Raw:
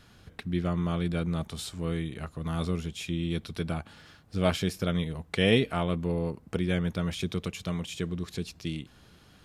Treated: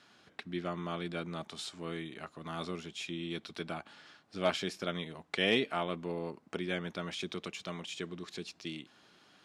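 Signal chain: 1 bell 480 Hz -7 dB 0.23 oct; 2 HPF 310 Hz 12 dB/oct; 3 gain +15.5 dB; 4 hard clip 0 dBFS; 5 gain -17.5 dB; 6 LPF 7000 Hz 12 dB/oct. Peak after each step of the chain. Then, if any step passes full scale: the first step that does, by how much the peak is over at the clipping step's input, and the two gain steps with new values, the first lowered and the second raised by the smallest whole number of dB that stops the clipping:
-9.5, -12.5, +3.0, 0.0, -17.5, -17.0 dBFS; step 3, 3.0 dB; step 3 +12.5 dB, step 5 -14.5 dB

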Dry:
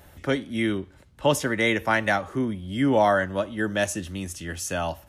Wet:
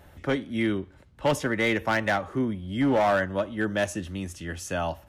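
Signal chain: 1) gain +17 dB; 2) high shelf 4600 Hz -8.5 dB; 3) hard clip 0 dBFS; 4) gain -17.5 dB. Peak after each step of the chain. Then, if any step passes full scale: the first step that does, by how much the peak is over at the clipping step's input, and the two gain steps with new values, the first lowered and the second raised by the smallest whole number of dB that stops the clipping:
+8.0, +8.0, 0.0, -17.5 dBFS; step 1, 8.0 dB; step 1 +9 dB, step 4 -9.5 dB

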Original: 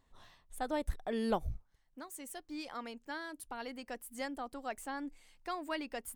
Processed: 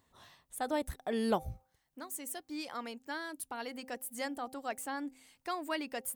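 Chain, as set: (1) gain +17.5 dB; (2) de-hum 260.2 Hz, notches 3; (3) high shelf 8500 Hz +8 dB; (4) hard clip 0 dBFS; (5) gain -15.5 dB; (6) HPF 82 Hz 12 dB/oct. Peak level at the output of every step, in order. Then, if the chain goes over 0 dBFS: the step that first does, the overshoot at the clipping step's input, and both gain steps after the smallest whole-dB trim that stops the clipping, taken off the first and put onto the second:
-2.5, -2.5, -2.5, -2.5, -18.0, -19.0 dBFS; no overload

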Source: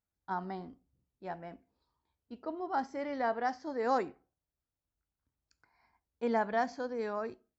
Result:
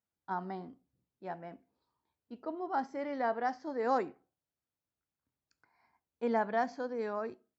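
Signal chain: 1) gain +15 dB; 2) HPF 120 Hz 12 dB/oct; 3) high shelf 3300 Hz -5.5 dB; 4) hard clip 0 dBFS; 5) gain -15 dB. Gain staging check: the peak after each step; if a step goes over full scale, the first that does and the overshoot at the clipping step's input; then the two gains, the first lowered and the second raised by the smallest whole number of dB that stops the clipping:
-4.0, -3.5, -4.0, -4.0, -19.0 dBFS; no overload

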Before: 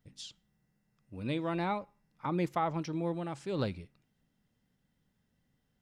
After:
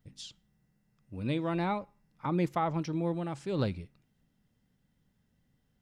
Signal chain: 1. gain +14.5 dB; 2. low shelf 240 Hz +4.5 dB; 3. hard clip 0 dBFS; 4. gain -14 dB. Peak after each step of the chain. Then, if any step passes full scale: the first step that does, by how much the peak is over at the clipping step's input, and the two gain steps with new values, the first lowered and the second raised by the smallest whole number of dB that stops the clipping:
-5.0, -4.5, -4.5, -18.5 dBFS; no overload

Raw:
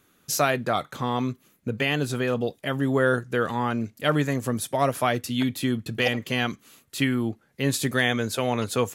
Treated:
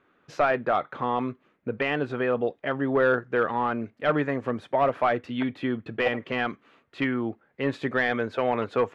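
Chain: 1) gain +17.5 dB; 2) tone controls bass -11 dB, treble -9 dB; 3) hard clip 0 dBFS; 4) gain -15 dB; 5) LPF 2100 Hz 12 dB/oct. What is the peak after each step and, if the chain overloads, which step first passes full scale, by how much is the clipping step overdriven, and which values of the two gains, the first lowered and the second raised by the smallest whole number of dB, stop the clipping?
+9.0, +8.5, 0.0, -15.0, -14.5 dBFS; step 1, 8.5 dB; step 1 +8.5 dB, step 4 -6 dB

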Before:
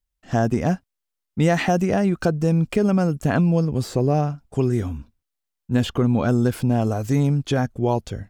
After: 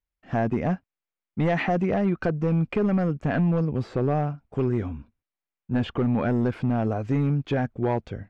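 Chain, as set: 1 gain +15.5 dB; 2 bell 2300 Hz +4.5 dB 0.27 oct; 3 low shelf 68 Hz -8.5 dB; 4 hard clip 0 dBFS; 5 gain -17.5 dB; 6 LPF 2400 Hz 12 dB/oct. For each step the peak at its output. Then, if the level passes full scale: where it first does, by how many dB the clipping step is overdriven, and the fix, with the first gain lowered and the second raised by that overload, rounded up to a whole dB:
+9.5, +9.5, +9.0, 0.0, -17.5, -17.0 dBFS; step 1, 9.0 dB; step 1 +6.5 dB, step 5 -8.5 dB

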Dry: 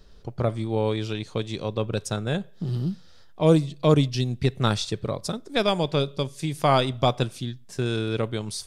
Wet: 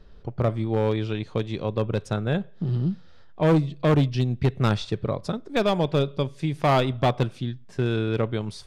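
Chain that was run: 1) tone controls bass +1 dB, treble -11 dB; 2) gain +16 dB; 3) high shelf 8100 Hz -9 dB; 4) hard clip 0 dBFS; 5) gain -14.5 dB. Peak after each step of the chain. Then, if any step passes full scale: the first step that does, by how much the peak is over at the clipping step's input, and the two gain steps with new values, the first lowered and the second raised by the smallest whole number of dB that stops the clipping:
-7.0, +9.0, +9.0, 0.0, -14.5 dBFS; step 2, 9.0 dB; step 2 +7 dB, step 5 -5.5 dB

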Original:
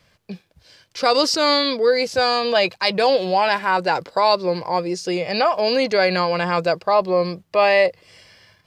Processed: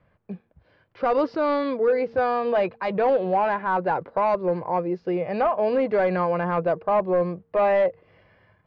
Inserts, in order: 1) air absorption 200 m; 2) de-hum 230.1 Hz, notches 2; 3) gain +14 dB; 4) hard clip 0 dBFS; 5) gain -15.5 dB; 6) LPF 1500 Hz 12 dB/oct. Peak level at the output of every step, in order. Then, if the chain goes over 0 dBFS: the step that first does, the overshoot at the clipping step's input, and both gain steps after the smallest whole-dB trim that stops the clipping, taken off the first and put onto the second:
-6.5, -6.5, +7.5, 0.0, -15.5, -15.0 dBFS; step 3, 7.5 dB; step 3 +6 dB, step 5 -7.5 dB

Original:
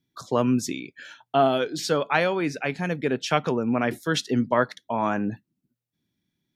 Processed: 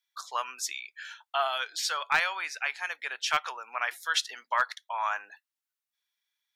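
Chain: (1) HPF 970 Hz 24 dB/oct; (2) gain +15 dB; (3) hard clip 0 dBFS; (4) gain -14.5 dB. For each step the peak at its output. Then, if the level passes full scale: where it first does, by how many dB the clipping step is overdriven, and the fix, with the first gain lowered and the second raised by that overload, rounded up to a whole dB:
-9.5, +5.5, 0.0, -14.5 dBFS; step 2, 5.5 dB; step 2 +9 dB, step 4 -8.5 dB

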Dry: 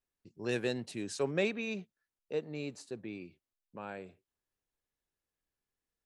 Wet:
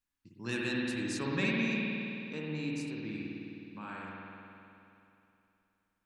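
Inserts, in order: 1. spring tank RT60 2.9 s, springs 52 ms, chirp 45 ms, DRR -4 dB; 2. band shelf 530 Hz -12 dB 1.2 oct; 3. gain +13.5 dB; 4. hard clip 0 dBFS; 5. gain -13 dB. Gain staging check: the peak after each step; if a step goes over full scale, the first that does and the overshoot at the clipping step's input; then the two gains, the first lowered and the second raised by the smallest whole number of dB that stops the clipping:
-15.0, -18.5, -5.0, -5.0, -18.0 dBFS; no overload

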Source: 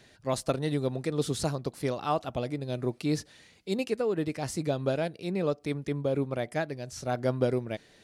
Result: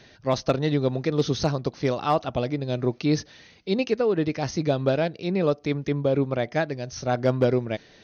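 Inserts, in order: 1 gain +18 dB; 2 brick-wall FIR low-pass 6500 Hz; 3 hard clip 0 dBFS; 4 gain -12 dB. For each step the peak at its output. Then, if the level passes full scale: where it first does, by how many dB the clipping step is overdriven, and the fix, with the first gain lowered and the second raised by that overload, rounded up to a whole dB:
+4.0, +4.0, 0.0, -12.0 dBFS; step 1, 4.0 dB; step 1 +14 dB, step 4 -8 dB

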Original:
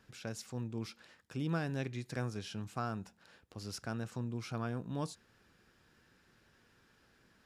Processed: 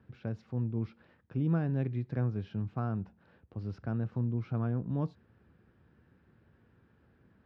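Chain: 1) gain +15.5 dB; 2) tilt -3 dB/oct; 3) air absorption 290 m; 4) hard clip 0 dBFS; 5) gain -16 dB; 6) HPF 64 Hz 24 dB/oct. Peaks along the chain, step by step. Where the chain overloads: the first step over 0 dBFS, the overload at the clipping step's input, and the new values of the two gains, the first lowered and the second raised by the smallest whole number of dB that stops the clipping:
-8.0, -3.0, -3.5, -3.5, -19.5, -20.5 dBFS; no overload

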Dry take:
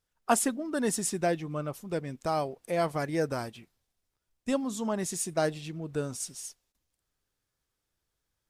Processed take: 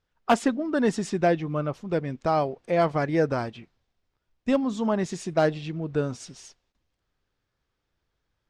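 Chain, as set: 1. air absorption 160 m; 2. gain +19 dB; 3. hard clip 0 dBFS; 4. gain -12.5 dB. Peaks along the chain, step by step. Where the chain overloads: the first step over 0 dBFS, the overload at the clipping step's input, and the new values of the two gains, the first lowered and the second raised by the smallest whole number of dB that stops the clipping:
-14.0, +5.0, 0.0, -12.5 dBFS; step 2, 5.0 dB; step 2 +14 dB, step 4 -7.5 dB

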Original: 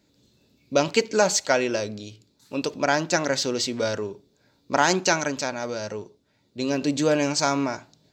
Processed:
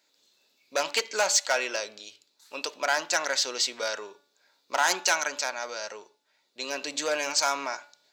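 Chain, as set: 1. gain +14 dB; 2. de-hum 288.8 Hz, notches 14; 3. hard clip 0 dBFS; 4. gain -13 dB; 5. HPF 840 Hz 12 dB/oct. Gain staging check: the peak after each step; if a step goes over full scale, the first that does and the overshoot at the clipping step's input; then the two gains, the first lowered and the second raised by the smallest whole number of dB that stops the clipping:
+9.0, +9.5, 0.0, -13.0, -9.0 dBFS; step 1, 9.5 dB; step 1 +4 dB, step 4 -3 dB

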